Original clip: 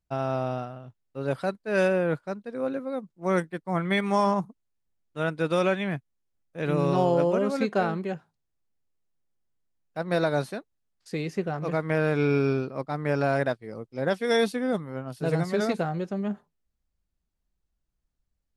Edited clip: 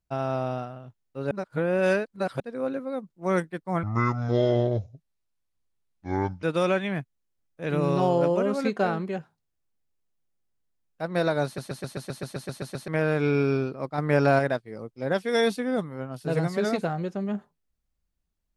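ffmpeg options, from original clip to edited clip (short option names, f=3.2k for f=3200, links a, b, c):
-filter_complex "[0:a]asplit=18[a][b][c][d][e][f][g][h][i][j][k][l][m][n][o][p][q][r];[a]atrim=end=1.312[s];[b]atrim=start=1.308:end=2.402,asetpts=PTS-STARTPTS,areverse[t];[c]atrim=start=2.398:end=3.834[u];[d]atrim=start=3.83:end=5.39,asetpts=PTS-STARTPTS,asetrate=26460,aresample=44100[v];[e]atrim=start=5.386:end=10.542[w];[f]atrim=start=10.408:end=10.542[x];[g]atrim=start=10.408:end=10.542[y];[h]atrim=start=10.408:end=10.542[z];[i]atrim=start=10.408:end=10.542[aa];[j]atrim=start=10.408:end=10.542[ab];[k]atrim=start=10.408:end=10.542[ac];[l]atrim=start=10.408:end=10.542[ad];[m]atrim=start=10.408:end=10.542[ae];[n]atrim=start=10.408:end=10.542[af];[o]atrim=start=10.408:end=10.542[ag];[p]atrim=start=11.838:end=12.942[ah];[q]atrim=start=12.938:end=13.352,asetpts=PTS-STARTPTS,volume=4.5dB[ai];[r]atrim=start=13.348[aj];[s][t]acrossfade=d=0.004:c1=hsin:c2=hsin[ak];[ak][u]acrossfade=d=0.004:c1=hsin:c2=hsin[al];[al][v]acrossfade=d=0.004:c1=hsin:c2=hsin[am];[am][w]acrossfade=d=0.004:c1=hsin:c2=hsin[an];[an][x]acrossfade=d=0.004:c1=hsin:c2=hsin[ao];[ao][y]acrossfade=d=0.004:c1=hsin:c2=hsin[ap];[ap][z]acrossfade=d=0.004:c1=hsin:c2=hsin[aq];[aq][aa]acrossfade=d=0.004:c1=hsin:c2=hsin[ar];[ar][ab]acrossfade=d=0.004:c1=hsin:c2=hsin[as];[as][ac]acrossfade=d=0.004:c1=hsin:c2=hsin[at];[at][ad]acrossfade=d=0.004:c1=hsin:c2=hsin[au];[au][ae]acrossfade=d=0.004:c1=hsin:c2=hsin[av];[av][af]acrossfade=d=0.004:c1=hsin:c2=hsin[aw];[aw][ag]acrossfade=d=0.004:c1=hsin:c2=hsin[ax];[ax][ah]acrossfade=d=0.004:c1=hsin:c2=hsin[ay];[ay][ai]acrossfade=d=0.004:c1=hsin:c2=hsin[az];[az][aj]acrossfade=d=0.004:c1=hsin:c2=hsin"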